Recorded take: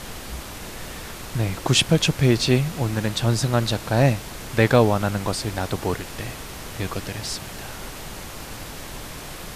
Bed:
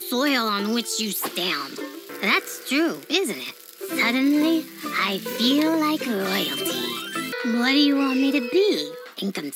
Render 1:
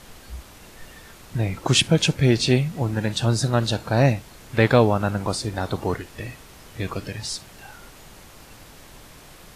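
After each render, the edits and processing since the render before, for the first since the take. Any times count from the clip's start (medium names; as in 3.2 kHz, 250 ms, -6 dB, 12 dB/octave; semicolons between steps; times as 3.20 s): noise print and reduce 10 dB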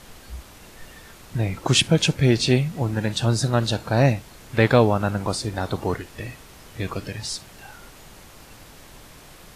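no audible change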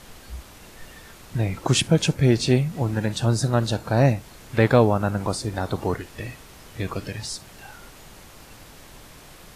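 dynamic bell 3.2 kHz, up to -5 dB, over -37 dBFS, Q 0.8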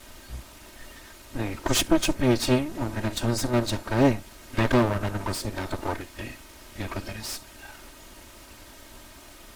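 comb filter that takes the minimum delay 3.2 ms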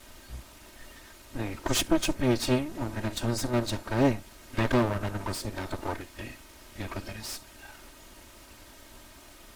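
trim -3.5 dB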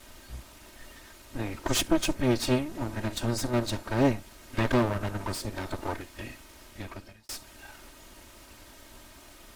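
6.63–7.29 s: fade out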